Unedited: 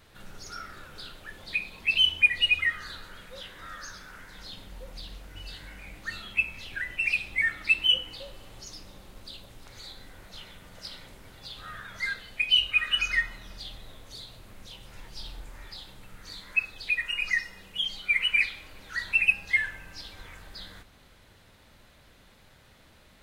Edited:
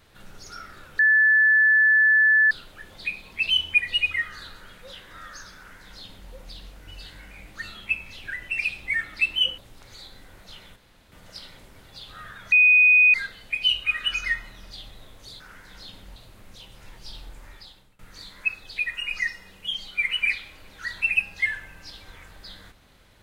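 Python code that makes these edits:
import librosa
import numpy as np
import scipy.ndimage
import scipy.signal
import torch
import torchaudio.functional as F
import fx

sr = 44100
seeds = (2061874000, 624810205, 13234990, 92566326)

y = fx.edit(x, sr, fx.insert_tone(at_s=0.99, length_s=1.52, hz=1740.0, db=-14.0),
    fx.duplicate(start_s=4.04, length_s=0.76, to_s=14.27),
    fx.cut(start_s=8.06, length_s=1.37),
    fx.insert_room_tone(at_s=10.61, length_s=0.36),
    fx.insert_tone(at_s=12.01, length_s=0.62, hz=2490.0, db=-12.0),
    fx.fade_out_to(start_s=15.58, length_s=0.52, floor_db=-21.0), tone=tone)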